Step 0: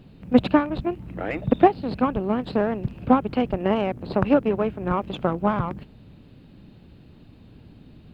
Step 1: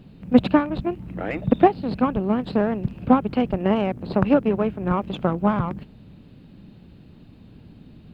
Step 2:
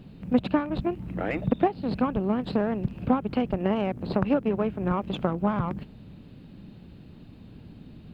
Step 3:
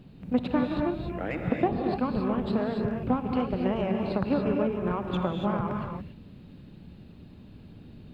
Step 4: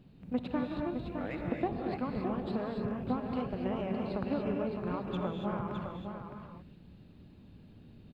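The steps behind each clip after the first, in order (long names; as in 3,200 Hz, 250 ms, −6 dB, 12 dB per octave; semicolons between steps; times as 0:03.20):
parametric band 190 Hz +4 dB 0.74 octaves
downward compressor 2 to 1, threshold −24 dBFS, peak gain reduction 9 dB
reverb whose tail is shaped and stops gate 310 ms rising, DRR 1.5 dB; level −3.5 dB
single-tap delay 612 ms −7 dB; level −7.5 dB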